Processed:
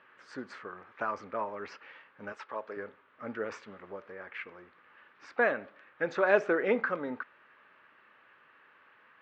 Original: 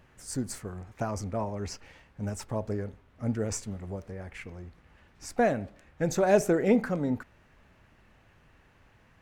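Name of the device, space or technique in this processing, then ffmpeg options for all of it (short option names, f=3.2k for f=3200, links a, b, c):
phone earpiece: -filter_complex "[0:a]highpass=480,equalizer=f=720:t=q:w=4:g=-8,equalizer=f=1.2k:t=q:w=4:g=7,equalizer=f=1.6k:t=q:w=4:g=5,lowpass=f=3.4k:w=0.5412,lowpass=f=3.4k:w=1.3066,asettb=1/sr,asplit=3[a][b][c];[a]atrim=end=2.324[d];[b]atrim=start=2.32:end=2.77,asetpts=PTS-STARTPTS,afade=t=in:d=0.004:c=qsin,afade=t=out:st=0.446:d=0.004:c=qsin,highpass=f=530:p=1[e];[c]atrim=start=2.766[f];[d][e]acrossfade=d=0.004:c1=hsin:c2=qsin[g];[g][f]acrossfade=d=0.004:c1=qsin:c2=hsin,volume=1.5dB"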